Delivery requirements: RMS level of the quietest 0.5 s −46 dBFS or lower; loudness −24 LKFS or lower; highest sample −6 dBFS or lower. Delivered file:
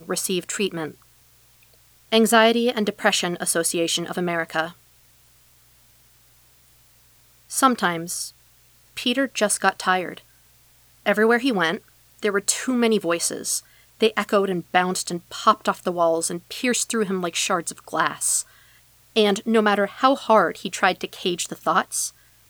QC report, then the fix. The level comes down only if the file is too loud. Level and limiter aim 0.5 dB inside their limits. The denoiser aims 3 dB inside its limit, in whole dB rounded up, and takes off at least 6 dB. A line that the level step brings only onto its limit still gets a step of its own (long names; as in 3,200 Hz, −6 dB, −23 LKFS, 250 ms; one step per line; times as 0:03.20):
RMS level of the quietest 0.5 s −56 dBFS: in spec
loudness −22.0 LKFS: out of spec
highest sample −3.5 dBFS: out of spec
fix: level −2.5 dB
brickwall limiter −6.5 dBFS